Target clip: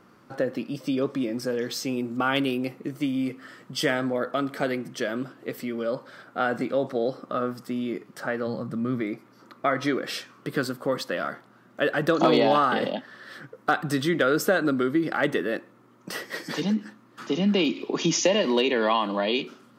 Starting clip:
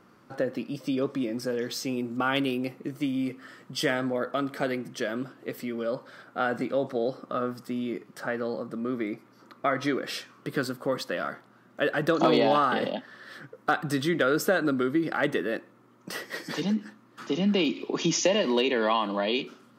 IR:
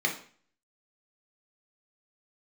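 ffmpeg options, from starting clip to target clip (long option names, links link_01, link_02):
-filter_complex "[0:a]asplit=3[link_01][link_02][link_03];[link_01]afade=type=out:start_time=8.46:duration=0.02[link_04];[link_02]asubboost=boost=5:cutoff=160,afade=type=in:start_time=8.46:duration=0.02,afade=type=out:start_time=9:duration=0.02[link_05];[link_03]afade=type=in:start_time=9:duration=0.02[link_06];[link_04][link_05][link_06]amix=inputs=3:normalize=0,volume=2dB"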